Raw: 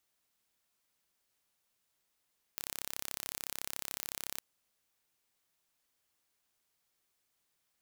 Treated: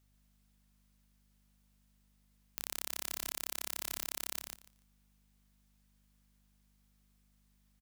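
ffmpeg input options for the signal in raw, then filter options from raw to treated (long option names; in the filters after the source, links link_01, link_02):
-f lavfi -i "aevalsrc='0.282*eq(mod(n,1305),0)':duration=1.81:sample_rate=44100"
-af "aeval=exprs='val(0)+0.000316*(sin(2*PI*50*n/s)+sin(2*PI*2*50*n/s)/2+sin(2*PI*3*50*n/s)/3+sin(2*PI*4*50*n/s)/4+sin(2*PI*5*50*n/s)/5)':channel_layout=same,aecho=1:1:145|290|435:0.562|0.0956|0.0163"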